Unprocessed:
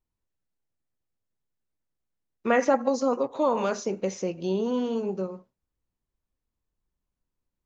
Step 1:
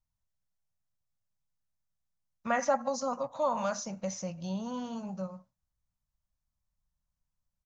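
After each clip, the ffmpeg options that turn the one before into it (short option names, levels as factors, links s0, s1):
-af "firequalizer=gain_entry='entry(160,0);entry(400,-27);entry(570,-4);entry(1200,-3);entry(2500,-9);entry(5900,1);entry(9400,-5)':delay=0.05:min_phase=1"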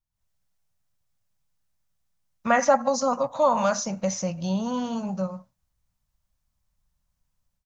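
-af "dynaudnorm=f=120:g=3:m=3.98,volume=0.708"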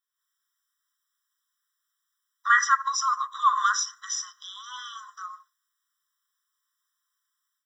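-af "afftfilt=real='re*eq(mod(floor(b*sr/1024/1000),2),1)':imag='im*eq(mod(floor(b*sr/1024/1000),2),1)':win_size=1024:overlap=0.75,volume=2.24"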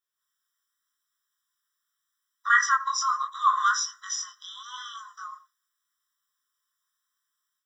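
-af "flanger=delay=17.5:depth=6.9:speed=0.8,volume=1.33"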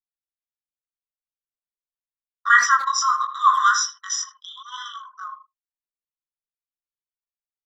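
-filter_complex "[0:a]anlmdn=0.398,asplit=2[s0][s1];[s1]adelay=80,highpass=300,lowpass=3400,asoftclip=type=hard:threshold=0.15,volume=0.282[s2];[s0][s2]amix=inputs=2:normalize=0,volume=1.88"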